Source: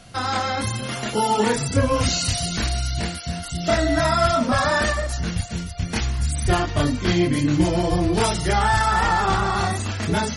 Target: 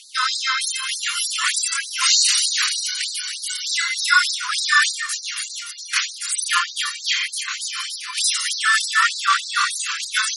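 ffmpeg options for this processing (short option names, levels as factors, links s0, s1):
-filter_complex "[0:a]asettb=1/sr,asplit=3[s0][s1][s2];[s0]atrim=end=2.604[s3];[s1]atrim=start=2.6:end=4.5,asetpts=PTS-STARTPTS,afade=t=in:d=0.004:c=qsin,afade=t=out:st=1.896:d=0.004:c=qsin,afreqshift=87[s4];[s2]atrim=start=4.496[s5];[s3][s4]acrossfade=d=0.004:c1=hsin:c2=qsin[s6];[s6][s5]acrossfade=d=0.004:c1=qsin:c2=hsin,afftfilt=real='re*gte(b*sr/1024,970*pow(3800/970,0.5+0.5*sin(2*PI*3.3*pts/sr)))':imag='im*gte(b*sr/1024,970*pow(3800/970,0.5+0.5*sin(2*PI*3.3*pts/sr)))':win_size=1024:overlap=0.75,volume=2.82"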